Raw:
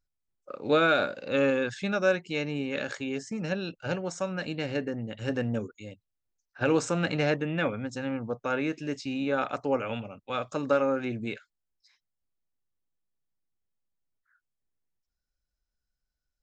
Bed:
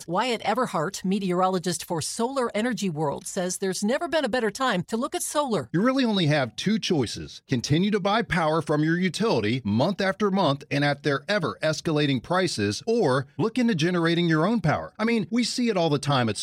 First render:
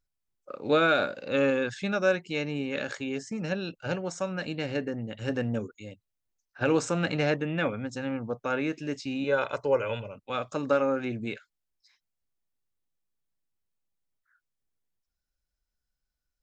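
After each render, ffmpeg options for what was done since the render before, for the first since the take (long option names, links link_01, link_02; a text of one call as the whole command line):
ffmpeg -i in.wav -filter_complex "[0:a]asettb=1/sr,asplit=3[link_01][link_02][link_03];[link_01]atrim=end=9.244[link_04];[link_02]atrim=start=9.24:end=10.16,asetpts=PTS-STARTPTS,afade=type=in:duration=0.004:curve=qsin,afade=type=out:start_time=0.916:duration=0.004:curve=qsin,aecho=1:1:2:0.64,atrim=end_sample=40572[link_05];[link_03]atrim=start=10.156[link_06];[link_04][link_05]acrossfade=duration=0.004:curve1=hsin:curve2=qsin[link_07];[link_07][link_06]acrossfade=duration=0.004:curve1=qsin:curve2=hsin" out.wav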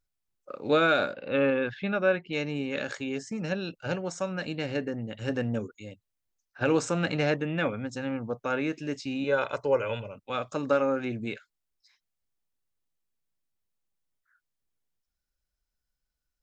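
ffmpeg -i in.wav -filter_complex "[0:a]asettb=1/sr,asplit=3[link_01][link_02][link_03];[link_01]atrim=end=1.134[link_04];[link_02]atrim=start=1.13:end=2.33,asetpts=PTS-STARTPTS,afade=type=in:duration=0.004:curve=qsin,afade=type=out:start_time=1.196:duration=0.004:curve=qsin,lowpass=frequency=3400:width=0.5412,lowpass=frequency=3400:width=1.3066[link_05];[link_03]atrim=start=2.326[link_06];[link_04][link_05]acrossfade=duration=0.004:curve1=hsin:curve2=qsin[link_07];[link_07][link_06]acrossfade=duration=0.004:curve1=qsin:curve2=hsin" out.wav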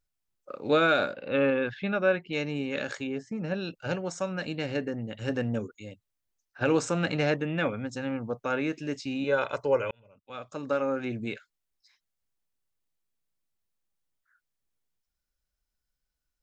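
ffmpeg -i in.wav -filter_complex "[0:a]asettb=1/sr,asplit=3[link_01][link_02][link_03];[link_01]atrim=end=3.074[link_04];[link_02]atrim=start=3.07:end=3.54,asetpts=PTS-STARTPTS,afade=type=in:duration=0.004:curve=qsin,afade=type=out:start_time=0.466:duration=0.004:curve=qsin,lowpass=frequency=1500:poles=1[link_05];[link_03]atrim=start=3.536[link_06];[link_04][link_05]acrossfade=duration=0.004:curve1=hsin:curve2=qsin[link_07];[link_07][link_06]acrossfade=duration=0.004:curve1=qsin:curve2=hsin,asplit=2[link_08][link_09];[link_08]atrim=end=9.91,asetpts=PTS-STARTPTS,afade=type=out:start_time=9.906:duration=0.004:curve=hsin[link_10];[link_09]atrim=start=9.91,asetpts=PTS-STARTPTS,afade=type=in:duration=1.26[link_11];[link_10][link_11]concat=n=2:v=0:a=1" out.wav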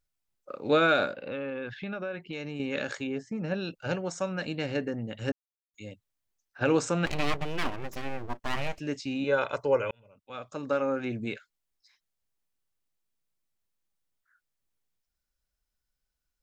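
ffmpeg -i in.wav -filter_complex "[0:a]asettb=1/sr,asplit=3[link_01][link_02][link_03];[link_01]atrim=end=1.114[link_04];[link_02]atrim=start=1.11:end=2.6,asetpts=PTS-STARTPTS,afade=type=in:duration=0.004:curve=qsin,afade=type=out:start_time=1.486:duration=0.004:curve=qsin,acompressor=threshold=-32dB:ratio=6:attack=3.2:release=140:knee=1:detection=peak[link_05];[link_03]atrim=start=2.596[link_06];[link_04][link_05]acrossfade=duration=0.004:curve1=hsin:curve2=qsin[link_07];[link_07][link_06]acrossfade=duration=0.004:curve1=qsin:curve2=hsin,asplit=3[link_08][link_09][link_10];[link_08]afade=type=out:start_time=7.05:duration=0.02[link_11];[link_09]aeval=exprs='abs(val(0))':channel_layout=same,afade=type=in:start_time=7.05:duration=0.02,afade=type=out:start_time=8.78:duration=0.02[link_12];[link_10]afade=type=in:start_time=8.78:duration=0.02[link_13];[link_11][link_12][link_13]amix=inputs=3:normalize=0,asplit=3[link_14][link_15][link_16];[link_14]atrim=end=5.32,asetpts=PTS-STARTPTS,afade=type=out:start_time=5.316:duration=0.004:curve=hsin[link_17];[link_15]atrim=start=5.32:end=5.74,asetpts=PTS-STARTPTS,volume=0[link_18];[link_16]atrim=start=5.74,asetpts=PTS-STARTPTS,afade=type=in:duration=0.004:curve=hsin[link_19];[link_17][link_18][link_19]concat=n=3:v=0:a=1" out.wav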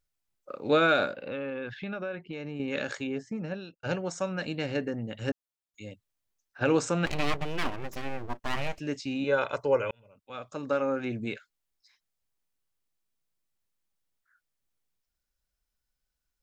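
ffmpeg -i in.wav -filter_complex "[0:a]asettb=1/sr,asplit=3[link_01][link_02][link_03];[link_01]atrim=end=2.154[link_04];[link_02]atrim=start=2.15:end=2.68,asetpts=PTS-STARTPTS,afade=type=in:duration=0.004:curve=qsin,afade=type=out:start_time=0.526:duration=0.004:curve=qsin,highshelf=frequency=3100:gain=-10.5[link_05];[link_03]atrim=start=2.676[link_06];[link_04][link_05]acrossfade=duration=0.004:curve1=hsin:curve2=qsin[link_07];[link_07][link_06]acrossfade=duration=0.004:curve1=qsin:curve2=hsin,asplit=2[link_08][link_09];[link_08]atrim=end=3.83,asetpts=PTS-STARTPTS,afade=type=out:start_time=3.32:duration=0.51[link_10];[link_09]atrim=start=3.83,asetpts=PTS-STARTPTS,afade=type=in:duration=0.004:curve=hsin[link_11];[link_10][link_11]concat=n=2:v=0:a=1" out.wav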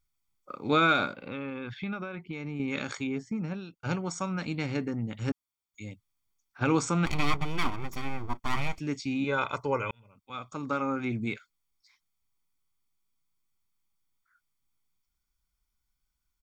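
ffmpeg -i in.wav -af "aecho=1:1:0.9:0.6" out.wav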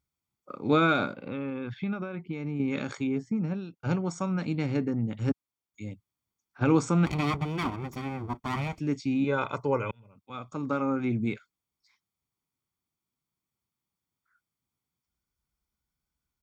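ffmpeg -i in.wav -af "highpass=81,tiltshelf=frequency=880:gain=4.5" out.wav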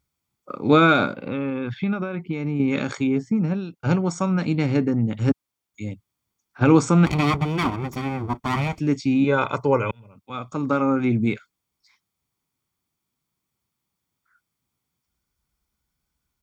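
ffmpeg -i in.wav -af "volume=7.5dB" out.wav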